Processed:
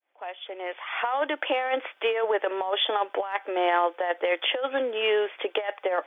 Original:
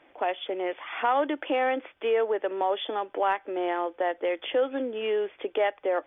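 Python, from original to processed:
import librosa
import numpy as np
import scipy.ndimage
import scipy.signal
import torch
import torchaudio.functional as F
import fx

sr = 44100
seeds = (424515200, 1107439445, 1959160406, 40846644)

y = fx.fade_in_head(x, sr, length_s=1.79)
y = scipy.signal.sosfilt(scipy.signal.butter(2, 620.0, 'highpass', fs=sr, output='sos'), y)
y = fx.over_compress(y, sr, threshold_db=-31.0, ratio=-0.5)
y = y * librosa.db_to_amplitude(7.5)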